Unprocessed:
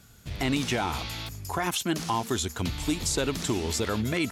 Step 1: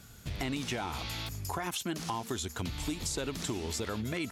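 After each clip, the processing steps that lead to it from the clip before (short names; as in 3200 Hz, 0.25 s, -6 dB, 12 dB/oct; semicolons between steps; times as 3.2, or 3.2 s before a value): compressor 3:1, threshold -36 dBFS, peak gain reduction 10.5 dB; gain +1.5 dB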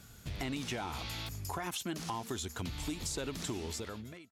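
ending faded out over 0.70 s; in parallel at -11 dB: soft clip -38 dBFS, distortion -8 dB; on the sum: gain -4 dB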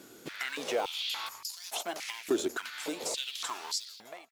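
in parallel at -7 dB: decimation with a swept rate 34×, swing 60% 0.93 Hz; on the sum: stepped high-pass 3.5 Hz 340–4600 Hz; gain +2 dB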